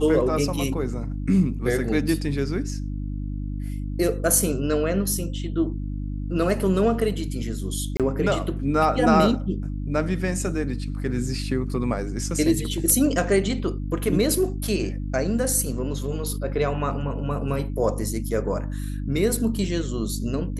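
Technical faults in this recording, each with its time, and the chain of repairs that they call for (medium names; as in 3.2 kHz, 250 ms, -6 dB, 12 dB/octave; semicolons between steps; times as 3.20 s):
hum 50 Hz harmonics 6 -29 dBFS
7.97–8.00 s: dropout 27 ms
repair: de-hum 50 Hz, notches 6; interpolate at 7.97 s, 27 ms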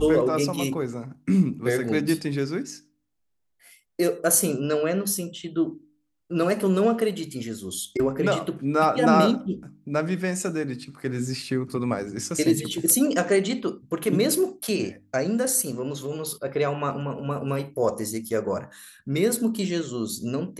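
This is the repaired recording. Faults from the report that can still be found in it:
nothing left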